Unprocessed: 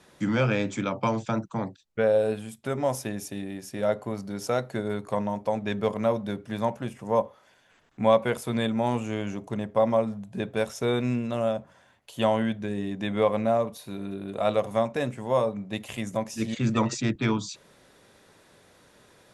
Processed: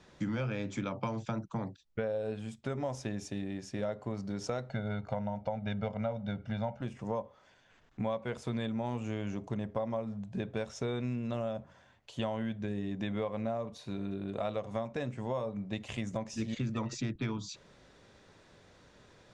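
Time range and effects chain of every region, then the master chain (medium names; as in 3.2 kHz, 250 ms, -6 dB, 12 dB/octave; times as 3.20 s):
4.69–6.81 s: low-pass 4.1 kHz + comb 1.4 ms, depth 79%
whole clip: low-pass 7.1 kHz 24 dB/octave; bass shelf 110 Hz +10 dB; compression 6:1, threshold -28 dBFS; trim -3.5 dB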